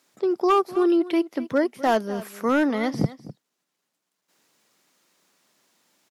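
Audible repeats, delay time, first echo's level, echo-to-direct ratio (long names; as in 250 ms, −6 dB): 1, 253 ms, −17.0 dB, −17.0 dB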